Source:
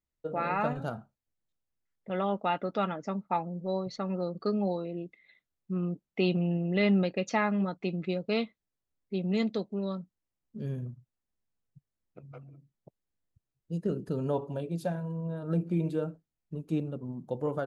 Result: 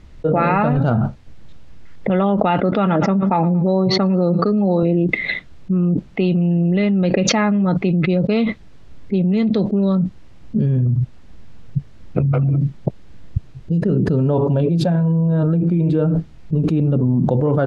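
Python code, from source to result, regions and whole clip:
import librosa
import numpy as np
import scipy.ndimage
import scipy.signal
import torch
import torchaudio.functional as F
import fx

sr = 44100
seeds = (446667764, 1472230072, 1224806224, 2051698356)

y = fx.chain(x, sr, fx.bandpass_edges(low_hz=120.0, high_hz=4100.0),
    fx.echo_feedback(ms=114, feedback_pct=41, wet_db=-22.0), at=(2.6, 4.83))
y = scipy.signal.sosfilt(scipy.signal.butter(2, 4000.0, 'lowpass', fs=sr, output='sos'), y)
y = fx.low_shelf(y, sr, hz=280.0, db=11.0)
y = fx.env_flatten(y, sr, amount_pct=100)
y = F.gain(torch.from_numpy(y), -1.0).numpy()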